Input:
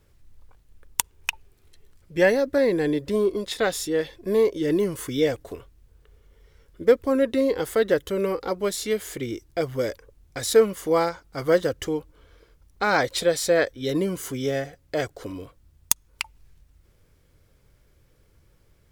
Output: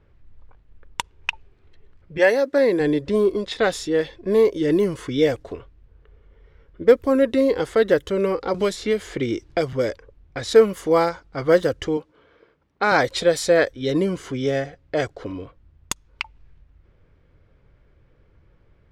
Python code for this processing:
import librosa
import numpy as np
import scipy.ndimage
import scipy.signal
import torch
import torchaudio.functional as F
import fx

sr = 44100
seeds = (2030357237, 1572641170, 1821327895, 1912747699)

y = fx.highpass(x, sr, hz=fx.line((2.17, 460.0), (2.79, 200.0)), slope=12, at=(2.17, 2.79), fade=0.02)
y = fx.band_squash(y, sr, depth_pct=70, at=(8.54, 9.73))
y = fx.highpass(y, sr, hz=180.0, slope=12, at=(11.97, 12.92))
y = fx.env_lowpass(y, sr, base_hz=2500.0, full_db=-17.5)
y = fx.high_shelf(y, sr, hz=5600.0, db=-5.0)
y = F.gain(torch.from_numpy(y), 3.5).numpy()